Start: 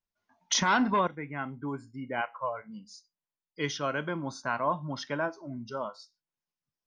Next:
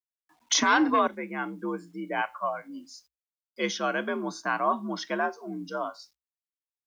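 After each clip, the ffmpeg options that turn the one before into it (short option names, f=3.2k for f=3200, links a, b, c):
-af "acrusher=bits=11:mix=0:aa=0.000001,afreqshift=59,volume=3dB"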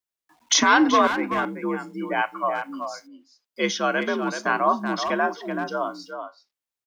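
-filter_complex "[0:a]asplit=2[a][b];[b]adelay=380,highpass=300,lowpass=3.4k,asoftclip=type=hard:threshold=-19.5dB,volume=-7dB[c];[a][c]amix=inputs=2:normalize=0,volume=5dB"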